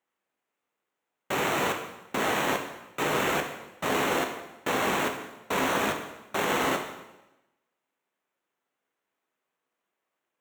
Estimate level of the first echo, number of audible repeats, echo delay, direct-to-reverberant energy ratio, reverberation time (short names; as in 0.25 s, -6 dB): none, none, none, 3.5 dB, 1.0 s